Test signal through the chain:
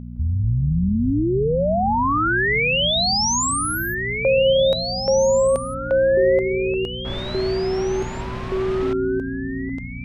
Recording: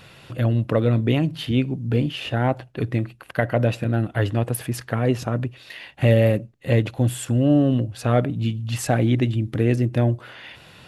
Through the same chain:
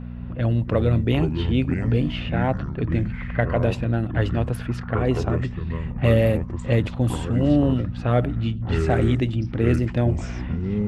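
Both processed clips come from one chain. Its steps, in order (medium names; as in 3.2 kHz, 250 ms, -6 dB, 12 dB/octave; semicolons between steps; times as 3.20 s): level-controlled noise filter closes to 1.3 kHz, open at -14 dBFS; mains buzz 60 Hz, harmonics 4, -32 dBFS -2 dB/octave; ever faster or slower copies 163 ms, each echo -6 st, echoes 3, each echo -6 dB; trim -1.5 dB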